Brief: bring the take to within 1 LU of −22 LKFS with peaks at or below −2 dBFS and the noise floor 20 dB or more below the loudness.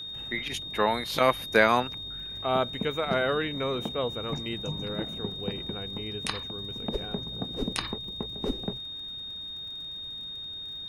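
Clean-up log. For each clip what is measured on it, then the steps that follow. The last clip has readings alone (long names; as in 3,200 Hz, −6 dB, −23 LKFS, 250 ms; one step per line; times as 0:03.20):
crackle rate 52 per second; interfering tone 3,700 Hz; level of the tone −36 dBFS; integrated loudness −30.0 LKFS; sample peak −6.0 dBFS; target loudness −22.0 LKFS
→ click removal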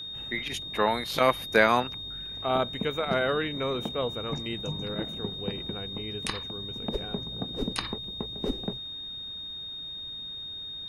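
crackle rate 0.37 per second; interfering tone 3,700 Hz; level of the tone −36 dBFS
→ notch filter 3,700 Hz, Q 30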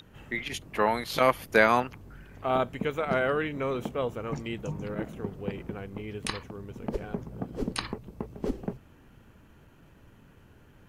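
interfering tone none found; integrated loudness −30.5 LKFS; sample peak −6.0 dBFS; target loudness −22.0 LKFS
→ level +8.5 dB
brickwall limiter −2 dBFS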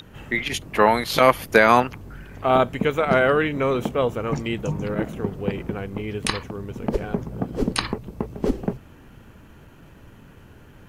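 integrated loudness −22.5 LKFS; sample peak −2.0 dBFS; background noise floor −48 dBFS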